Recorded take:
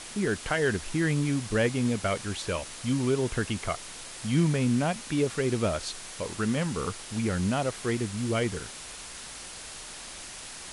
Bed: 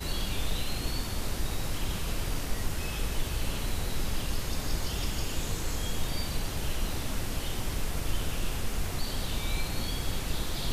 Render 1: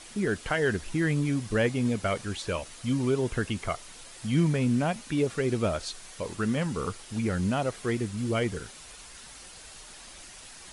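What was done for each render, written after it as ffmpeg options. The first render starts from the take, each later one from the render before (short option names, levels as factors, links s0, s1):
-af "afftdn=nr=7:nf=-42"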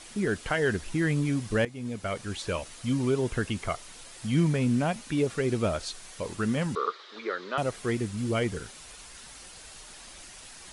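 -filter_complex "[0:a]asettb=1/sr,asplit=3[s0][s1][s2];[s0]atrim=end=6.754[s3];[s1]atrim=start=6.75:end=7.58,asetpts=PTS-STARTPTS,afade=t=in:d=0.004:c=qsin,afade=t=out:st=0.826:d=0.004:c=qsin,highpass=f=390:w=0.5412,highpass=f=390:w=1.3066,equalizer=f=400:t=q:w=4:g=5,equalizer=f=760:t=q:w=4:g=-7,equalizer=f=1200:t=q:w=4:g=9,equalizer=f=1800:t=q:w=4:g=3,equalizer=f=2700:t=q:w=4:g=-6,equalizer=f=3800:t=q:w=4:g=8,lowpass=f=4400:w=0.5412,lowpass=f=4400:w=1.3066[s4];[s2]atrim=start=7.576[s5];[s3][s4]acrossfade=d=0.004:c1=hsin:c2=qsin[s6];[s6][s5]acrossfade=d=0.004:c1=qsin:c2=hsin,asplit=2[s7][s8];[s7]atrim=end=1.65,asetpts=PTS-STARTPTS,afade=t=out:st=1.646:d=0.004:c=hsin:silence=0.158489[s9];[s8]atrim=start=1.65,asetpts=PTS-STARTPTS,afade=t=in:d=0.77:silence=0.158489[s10];[s9][s10]concat=n=2:v=0:a=1"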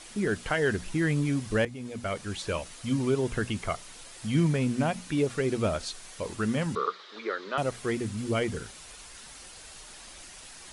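-af "bandreject=f=60:t=h:w=6,bandreject=f=120:t=h:w=6,bandreject=f=180:t=h:w=6,bandreject=f=240:t=h:w=6"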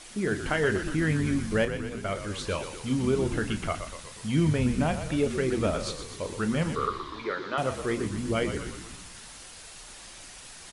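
-filter_complex "[0:a]asplit=2[s0][s1];[s1]adelay=32,volume=0.266[s2];[s0][s2]amix=inputs=2:normalize=0,asplit=8[s3][s4][s5][s6][s7][s8][s9][s10];[s4]adelay=122,afreqshift=-57,volume=0.355[s11];[s5]adelay=244,afreqshift=-114,volume=0.214[s12];[s6]adelay=366,afreqshift=-171,volume=0.127[s13];[s7]adelay=488,afreqshift=-228,volume=0.0767[s14];[s8]adelay=610,afreqshift=-285,volume=0.0462[s15];[s9]adelay=732,afreqshift=-342,volume=0.0275[s16];[s10]adelay=854,afreqshift=-399,volume=0.0166[s17];[s3][s11][s12][s13][s14][s15][s16][s17]amix=inputs=8:normalize=0"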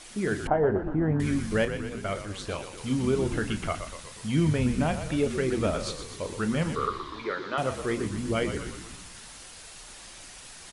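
-filter_complex "[0:a]asettb=1/sr,asplit=3[s0][s1][s2];[s0]atrim=end=0.474[s3];[s1]atrim=start=0.47:end=1.2,asetpts=PTS-STARTPTS,afade=t=in:d=0.004:c=qsin,afade=t=out:st=0.726:d=0.004:c=qsin,lowpass=f=790:t=q:w=2.9[s4];[s2]atrim=start=1.196[s5];[s3][s4]acrossfade=d=0.004:c1=hsin:c2=qsin[s6];[s6][s5]acrossfade=d=0.004:c1=qsin:c2=hsin,asettb=1/sr,asplit=3[s7][s8][s9];[s7]atrim=end=2.224[s10];[s8]atrim=start=2.22:end=2.78,asetpts=PTS-STARTPTS,afade=t=in:d=0.004:c=qsin,afade=t=out:st=0.556:d=0.004:c=qsin,tremolo=f=200:d=0.667[s11];[s9]atrim=start=2.776[s12];[s10][s11]acrossfade=d=0.004:c1=hsin:c2=qsin[s13];[s13][s12]acrossfade=d=0.004:c1=qsin:c2=hsin"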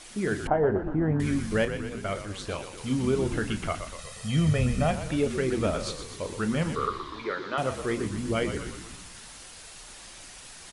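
-filter_complex "[0:a]asettb=1/sr,asplit=3[s0][s1][s2];[s0]atrim=end=3.984[s3];[s1]atrim=start=3.98:end=4.91,asetpts=PTS-STARTPTS,afade=t=in:d=0.004:c=qsin,afade=t=out:st=0.926:d=0.004:c=qsin,aecho=1:1:1.6:0.65,atrim=end_sample=41013[s4];[s2]atrim=start=4.906[s5];[s3][s4]acrossfade=d=0.004:c1=hsin:c2=qsin[s6];[s6][s5]acrossfade=d=0.004:c1=qsin:c2=hsin"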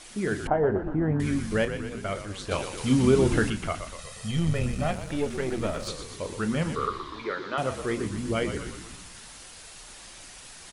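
-filter_complex "[0:a]asettb=1/sr,asplit=3[s0][s1][s2];[s0]atrim=end=2.514[s3];[s1]atrim=start=2.51:end=3.5,asetpts=PTS-STARTPTS,afade=t=in:d=0.004:c=qsin,afade=t=out:st=0.986:d=0.004:c=qsin,acontrast=44[s4];[s2]atrim=start=3.496[s5];[s3][s4]acrossfade=d=0.004:c1=hsin:c2=qsin[s6];[s6][s5]acrossfade=d=0.004:c1=qsin:c2=hsin,asettb=1/sr,asplit=3[s7][s8][s9];[s7]atrim=end=4.314[s10];[s8]atrim=start=4.31:end=5.88,asetpts=PTS-STARTPTS,afade=t=in:d=0.004:c=qsin,afade=t=out:st=1.566:d=0.004:c=qsin,aeval=exprs='if(lt(val(0),0),0.447*val(0),val(0))':c=same[s11];[s9]atrim=start=5.876[s12];[s10][s11]acrossfade=d=0.004:c1=hsin:c2=qsin[s13];[s13][s12]acrossfade=d=0.004:c1=qsin:c2=hsin"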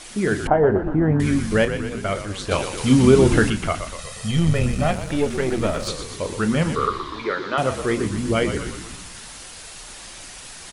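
-af "volume=2.24"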